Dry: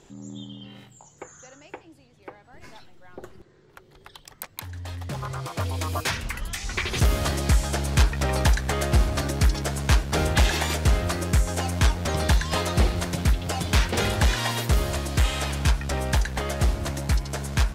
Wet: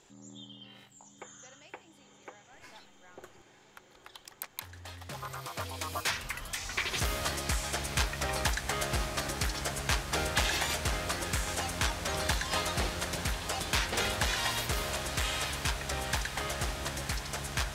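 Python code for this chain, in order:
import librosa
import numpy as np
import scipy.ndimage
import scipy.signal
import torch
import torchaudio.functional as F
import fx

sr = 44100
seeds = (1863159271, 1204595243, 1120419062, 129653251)

y = fx.low_shelf(x, sr, hz=470.0, db=-11.0)
y = fx.echo_diffused(y, sr, ms=935, feedback_pct=72, wet_db=-10.5)
y = F.gain(torch.from_numpy(y), -3.5).numpy()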